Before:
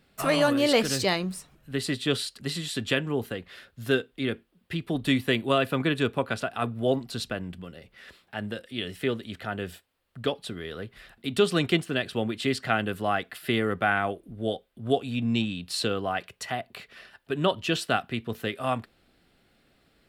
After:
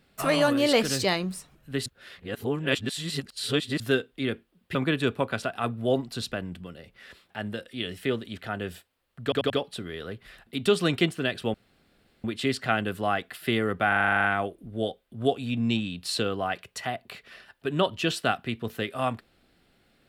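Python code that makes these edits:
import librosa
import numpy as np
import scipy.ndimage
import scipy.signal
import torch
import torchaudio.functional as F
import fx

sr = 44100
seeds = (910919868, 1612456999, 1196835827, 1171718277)

y = fx.edit(x, sr, fx.reverse_span(start_s=1.86, length_s=1.94),
    fx.cut(start_s=4.75, length_s=0.98),
    fx.stutter(start_s=10.21, slice_s=0.09, count=4),
    fx.insert_room_tone(at_s=12.25, length_s=0.7),
    fx.stutter(start_s=13.89, slice_s=0.04, count=10), tone=tone)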